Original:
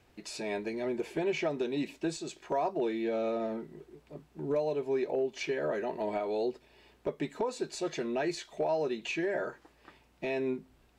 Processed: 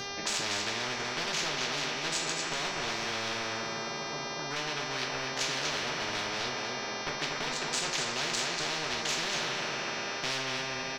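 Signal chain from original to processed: local Wiener filter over 15 samples; three-band isolator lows -13 dB, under 370 Hz, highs -14 dB, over 6.5 kHz; delay 241 ms -8.5 dB; in parallel at -10.5 dB: saturation -31.5 dBFS, distortion -13 dB; on the sum: mains buzz 400 Hz, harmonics 16, -51 dBFS -5 dB/octave; two-slope reverb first 0.37 s, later 4.9 s, from -19 dB, DRR 0 dB; spectrum-flattening compressor 10:1

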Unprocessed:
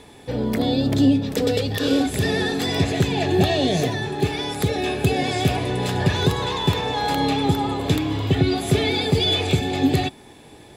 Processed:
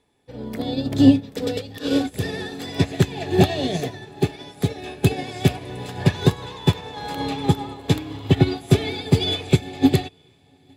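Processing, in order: on a send: echo that smears into a reverb 838 ms, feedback 42%, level -14 dB; on the sum: upward expansion 2.5:1, over -31 dBFS; trim +5.5 dB

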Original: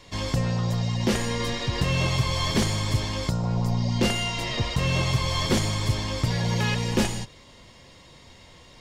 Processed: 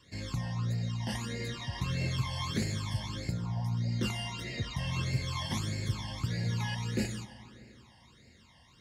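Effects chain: reverberation RT60 3.0 s, pre-delay 36 ms, DRR 9.5 dB; phase shifter stages 12, 1.6 Hz, lowest notch 400–1100 Hz; high-pass 64 Hz; trim -8 dB

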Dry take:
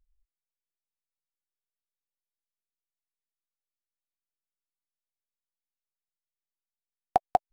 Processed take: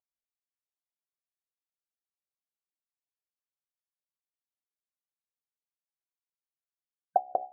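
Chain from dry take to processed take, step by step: de-hum 66.9 Hz, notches 12; dynamic bell 440 Hz, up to +6 dB, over -39 dBFS, Q 1.3; wah-wah 3.9 Hz 510–1100 Hz, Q 3.1; loudest bins only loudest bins 64; comb of notches 470 Hz

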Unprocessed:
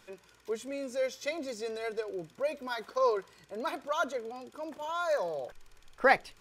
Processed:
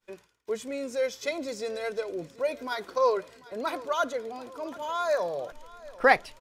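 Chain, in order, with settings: expander -49 dBFS; on a send: feedback delay 743 ms, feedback 54%, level -20 dB; on the sum: trim +3.5 dB

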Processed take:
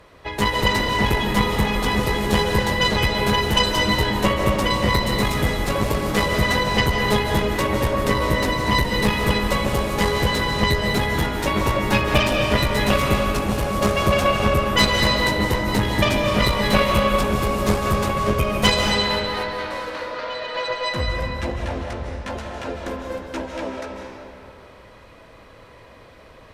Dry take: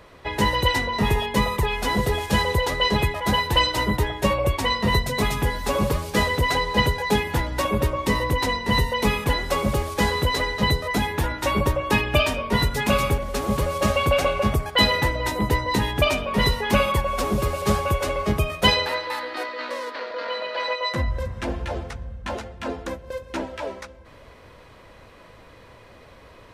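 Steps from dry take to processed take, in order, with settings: Chebyshev shaper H 4 -12 dB, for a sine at -4 dBFS; algorithmic reverb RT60 2.6 s, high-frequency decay 0.7×, pre-delay 115 ms, DRR 0.5 dB; trim -1 dB

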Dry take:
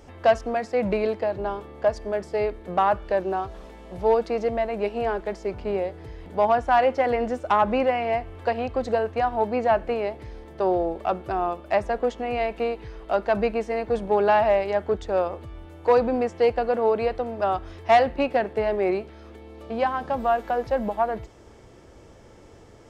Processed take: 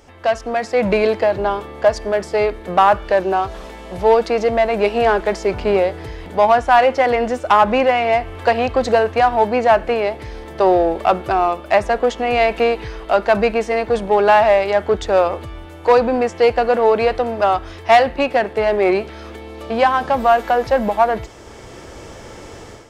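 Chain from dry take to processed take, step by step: tilt shelf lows -3.5 dB, about 700 Hz; level rider gain up to 13 dB; in parallel at -7 dB: saturation -19 dBFS, distortion -6 dB; on the sum: trim -1.5 dB

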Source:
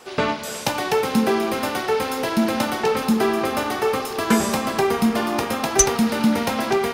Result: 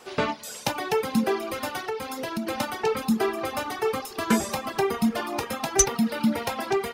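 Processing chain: reverb removal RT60 1.7 s; 1.88–2.47 s: compression 6:1, threshold -24 dBFS, peak gain reduction 8.5 dB; trim -3.5 dB

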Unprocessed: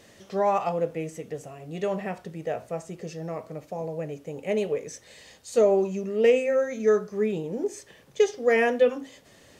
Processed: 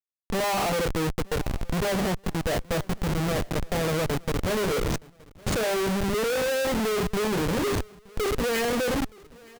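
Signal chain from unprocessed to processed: hum notches 50/100/150/200/250/300/350/400/450 Hz; echo from a far wall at 19 m, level -28 dB; Schmitt trigger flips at -35 dBFS; on a send: feedback delay 921 ms, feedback 38%, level -24 dB; on the sum: trim +2 dB

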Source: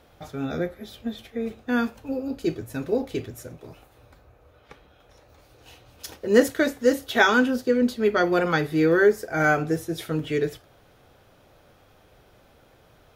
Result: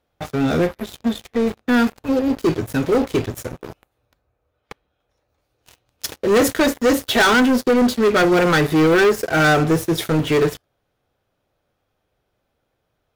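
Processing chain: waveshaping leveller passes 5; trim -6.5 dB

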